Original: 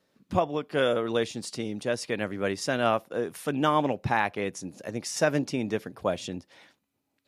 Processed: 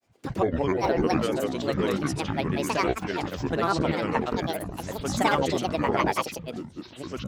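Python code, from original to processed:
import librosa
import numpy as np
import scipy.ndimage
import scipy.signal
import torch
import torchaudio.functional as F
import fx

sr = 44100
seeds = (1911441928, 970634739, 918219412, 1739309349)

y = fx.hum_notches(x, sr, base_hz=60, count=3)
y = fx.echo_pitch(y, sr, ms=104, semitones=-6, count=2, db_per_echo=-3.0)
y = fx.granulator(y, sr, seeds[0], grain_ms=100.0, per_s=20.0, spray_ms=100.0, spread_st=12)
y = y * librosa.db_to_amplitude(1.0)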